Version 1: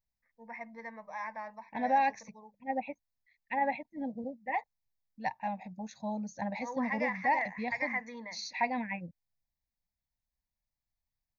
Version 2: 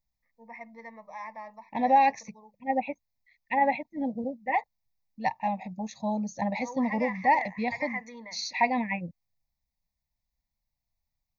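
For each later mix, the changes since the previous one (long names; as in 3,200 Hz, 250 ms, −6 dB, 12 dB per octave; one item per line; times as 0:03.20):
second voice +6.5 dB
master: add Butterworth band-reject 1,500 Hz, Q 3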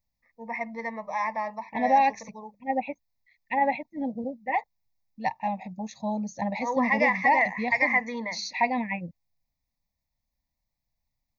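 first voice +11.5 dB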